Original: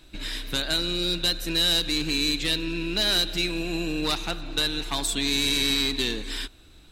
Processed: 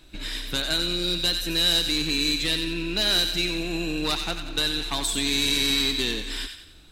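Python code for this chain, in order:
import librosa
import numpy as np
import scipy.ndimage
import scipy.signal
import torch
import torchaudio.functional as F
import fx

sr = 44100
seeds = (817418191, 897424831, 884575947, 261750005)

y = fx.echo_wet_highpass(x, sr, ms=91, feedback_pct=44, hz=1400.0, wet_db=-6.0)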